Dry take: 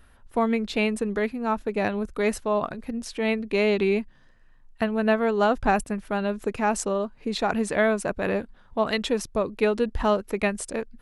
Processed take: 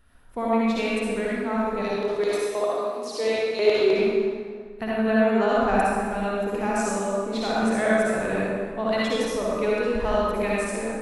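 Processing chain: 1.82–3.93 LFO high-pass square 4.8 Hz 410–3900 Hz; reverb RT60 1.9 s, pre-delay 48 ms, DRR -7 dB; gain -7 dB

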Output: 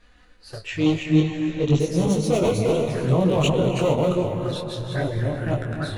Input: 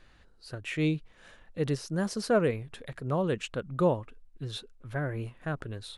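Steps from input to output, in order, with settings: regenerating reverse delay 0.172 s, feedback 49%, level -0.5 dB; 5.04–5.5 bell 4400 Hz -11.5 dB 0.77 oct; in parallel at -1 dB: limiter -19 dBFS, peak gain reduction 8.5 dB; 3.24–3.64 on the sum: transient shaper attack -9 dB, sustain +9 dB; wavefolder -15 dBFS; added harmonics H 7 -32 dB, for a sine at -15 dBFS; envelope flanger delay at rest 4.4 ms, full sweep at -21 dBFS; 0.66–1.8 brick-wall FIR low-pass 7900 Hz; on a send: analogue delay 0.276 s, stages 4096, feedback 63%, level -11.5 dB; on the sum: non-linear reverb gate 0.48 s rising, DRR 8.5 dB; detuned doubles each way 20 cents; gain +6 dB

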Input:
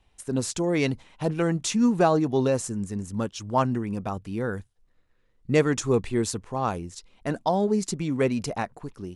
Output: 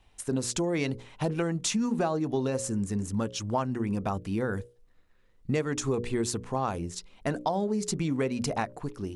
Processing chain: notches 60/120/180/240/300/360/420/480/540/600 Hz; compressor 6:1, threshold -28 dBFS, peak gain reduction 13 dB; gain +3 dB

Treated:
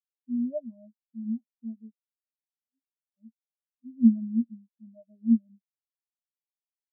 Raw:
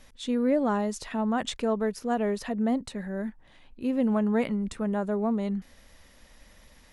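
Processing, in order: low shelf 95 Hz +5.5 dB; small resonant body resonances 230/610 Hz, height 11 dB, ringing for 0.1 s; 2–3.17 octave resonator C#, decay 0.16 s; spectral expander 4:1

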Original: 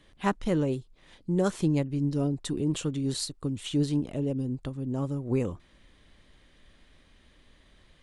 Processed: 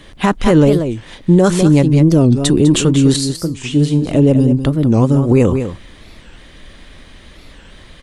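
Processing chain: 3.16–4.06 resonator 150 Hz, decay 0.44 s, harmonics all, mix 70%; echo 0.202 s -10 dB; maximiser +20 dB; record warp 45 rpm, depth 250 cents; gain -1 dB

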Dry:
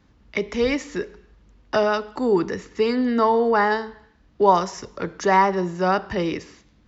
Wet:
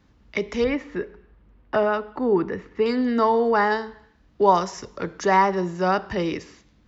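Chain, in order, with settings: 0.64–2.86 LPF 2300 Hz 12 dB/oct; gain -1 dB

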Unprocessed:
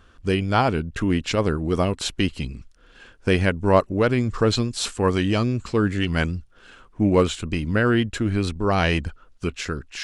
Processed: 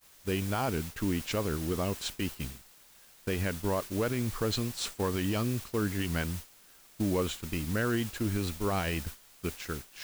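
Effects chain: limiter -13 dBFS, peak gain reduction 8.5 dB; requantised 6-bit, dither triangular; expander -25 dBFS; gain -8 dB

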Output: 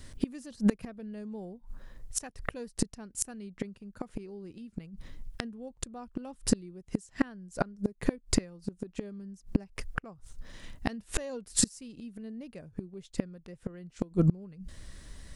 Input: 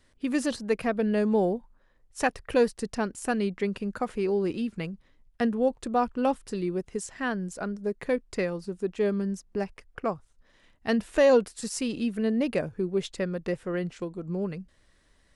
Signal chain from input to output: tone controls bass +10 dB, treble +7 dB; flipped gate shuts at -21 dBFS, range -30 dB; gain +9 dB

